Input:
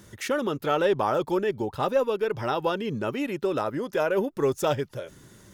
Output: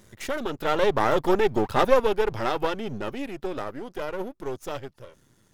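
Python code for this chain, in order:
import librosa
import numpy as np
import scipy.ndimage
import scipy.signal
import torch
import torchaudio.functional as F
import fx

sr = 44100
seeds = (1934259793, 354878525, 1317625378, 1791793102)

y = np.where(x < 0.0, 10.0 ** (-12.0 / 20.0) * x, x)
y = fx.doppler_pass(y, sr, speed_mps=11, closest_m=6.4, pass_at_s=1.64)
y = F.gain(torch.from_numpy(y), 8.5).numpy()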